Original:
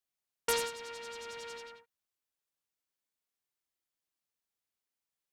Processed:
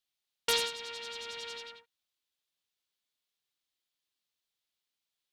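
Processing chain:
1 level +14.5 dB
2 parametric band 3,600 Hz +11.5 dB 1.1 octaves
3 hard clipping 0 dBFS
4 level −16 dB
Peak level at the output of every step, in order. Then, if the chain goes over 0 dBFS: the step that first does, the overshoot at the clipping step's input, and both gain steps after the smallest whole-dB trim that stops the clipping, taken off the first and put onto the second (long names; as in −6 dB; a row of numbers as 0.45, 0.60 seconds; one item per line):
−3.0, +3.0, 0.0, −16.0 dBFS
step 2, 3.0 dB
step 1 +11.5 dB, step 4 −13 dB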